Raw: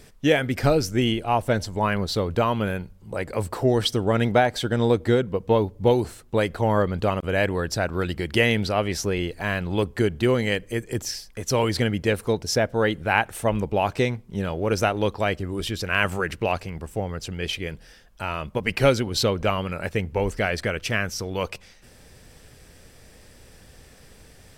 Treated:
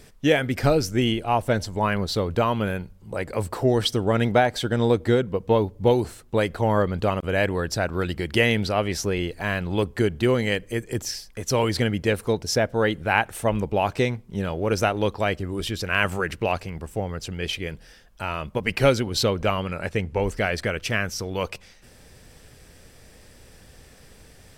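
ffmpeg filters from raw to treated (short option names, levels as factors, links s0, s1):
-filter_complex "[0:a]asettb=1/sr,asplit=3[s0][s1][s2];[s0]atrim=end=19.604[s3];[s1]atrim=start=19.6:end=20.24,asetpts=PTS-STARTPTS,afade=t=in:d=0.004:c=qsin,afade=t=out:st=0.636:d=0.004:c=qsin,lowpass=11000[s4];[s2]atrim=start=20.236[s5];[s3][s4]acrossfade=d=0.004:c1=hsin:c2=qsin[s6];[s6][s5]acrossfade=d=0.004:c1=qsin:c2=hsin"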